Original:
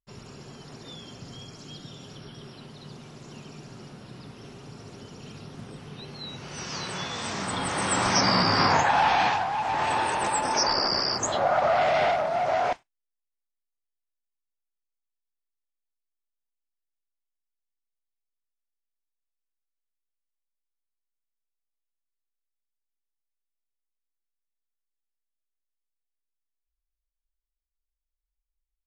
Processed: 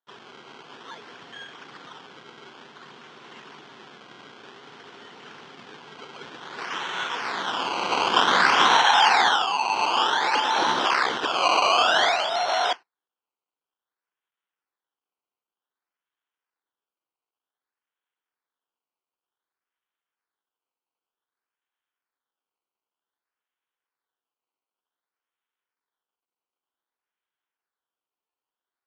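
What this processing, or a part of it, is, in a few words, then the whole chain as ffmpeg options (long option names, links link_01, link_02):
circuit-bent sampling toy: -af "acrusher=samples=17:mix=1:aa=0.000001:lfo=1:lforange=17:lforate=0.54,highpass=430,equalizer=frequency=600:width_type=q:width=4:gain=-7,equalizer=frequency=1000:width_type=q:width=4:gain=3,equalizer=frequency=1500:width_type=q:width=4:gain=5,equalizer=frequency=3200:width_type=q:width=4:gain=8,lowpass=frequency=5800:width=0.5412,lowpass=frequency=5800:width=1.3066,volume=3dB"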